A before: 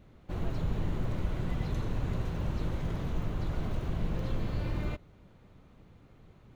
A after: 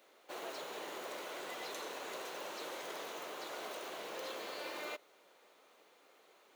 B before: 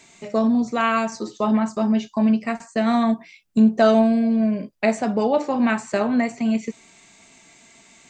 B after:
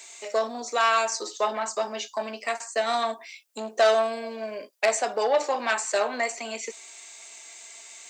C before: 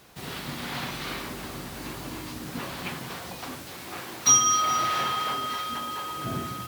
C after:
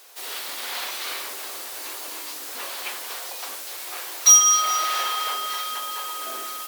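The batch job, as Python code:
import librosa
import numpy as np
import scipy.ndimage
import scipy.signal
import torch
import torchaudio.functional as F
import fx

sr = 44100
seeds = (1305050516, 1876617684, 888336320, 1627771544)

y = 10.0 ** (-12.5 / 20.0) * np.tanh(x / 10.0 ** (-12.5 / 20.0))
y = scipy.signal.sosfilt(scipy.signal.butter(4, 430.0, 'highpass', fs=sr, output='sos'), y)
y = fx.high_shelf(y, sr, hz=4000.0, db=11.5)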